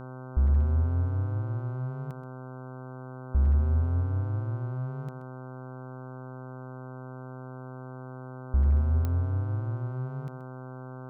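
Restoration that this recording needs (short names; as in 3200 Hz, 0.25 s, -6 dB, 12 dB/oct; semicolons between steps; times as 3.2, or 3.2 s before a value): clip repair -17 dBFS; de-click; de-hum 128.6 Hz, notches 12; inverse comb 0.128 s -13.5 dB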